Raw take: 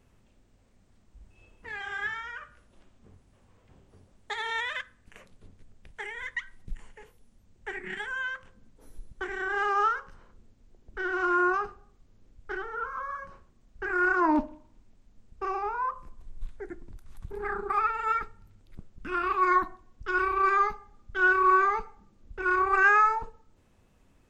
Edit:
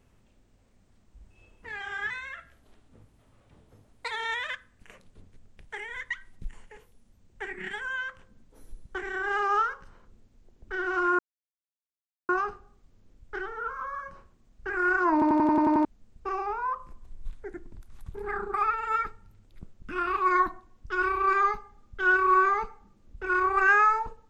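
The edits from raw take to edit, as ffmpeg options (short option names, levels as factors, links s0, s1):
-filter_complex "[0:a]asplit=12[s0][s1][s2][s3][s4][s5][s6][s7][s8][s9][s10][s11];[s0]atrim=end=2.104[s12];[s1]atrim=start=2.1:end=4.37,asetpts=PTS-STARTPTS,asetrate=49833,aresample=44100,atrim=end_sample=88590,asetpts=PTS-STARTPTS[s13];[s2]atrim=start=4.366:end=11.45,asetpts=PTS-STARTPTS,afade=t=out:st=7.08:d=0.004:c=hsin,apad=pad_dur=1.1[s14];[s3]atrim=start=11.45:end=14.382,asetpts=PTS-STARTPTS,afade=t=in:d=0.004:c=hsin[s15];[s4]atrim=start=14.288:end=14.382[s16];[s5]atrim=start=14.288:end=14.382[s17];[s6]atrim=start=14.288:end=14.382[s18];[s7]atrim=start=14.288:end=14.382[s19];[s8]atrim=start=14.288:end=14.382[s20];[s9]atrim=start=14.288:end=14.382[s21];[s10]atrim=start=14.288:end=14.382[s22];[s11]atrim=start=15.008[s23];[s12][s13]acrossfade=d=0.004:c1=hsin:c2=hsin[s24];[s14][s15]concat=n=2:v=0:a=1[s25];[s24][s25]acrossfade=d=0.004:c1=hsin:c2=hsin[s26];[s26][s16]acrossfade=d=0.004:c1=hsin:c2=hsin[s27];[s27][s17]acrossfade=d=0.004:c1=hsin:c2=hsin[s28];[s28][s18]acrossfade=d=0.004:c1=hsin:c2=hsin[s29];[s29][s19]acrossfade=d=0.004:c1=hsin:c2=hsin[s30];[s30][s20]acrossfade=d=0.004:c1=hsin:c2=hsin[s31];[s31][s21]acrossfade=d=0.004:c1=hsin:c2=hsin[s32];[s32][s22]acrossfade=d=0.004:c1=hsin:c2=hsin[s33];[s33][s23]acrossfade=d=0.004:c1=hsin:c2=hsin"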